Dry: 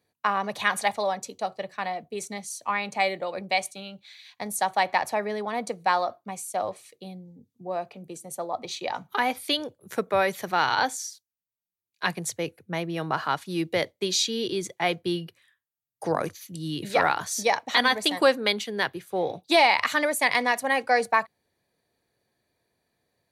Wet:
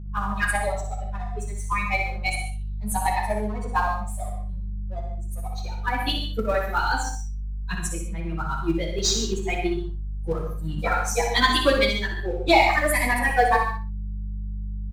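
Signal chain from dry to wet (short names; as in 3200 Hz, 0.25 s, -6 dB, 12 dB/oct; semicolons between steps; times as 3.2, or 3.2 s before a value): per-bin expansion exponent 2; de-hum 58.78 Hz, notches 16; sample leveller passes 1; buzz 50 Hz, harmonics 4, -41 dBFS -7 dB/oct; plain phase-vocoder stretch 0.64×; in parallel at -11 dB: Schmitt trigger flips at -23.5 dBFS; on the sum: feedback echo 61 ms, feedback 22%, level -7 dB; non-linear reverb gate 0.17 s flat, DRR 4 dB; gain +5 dB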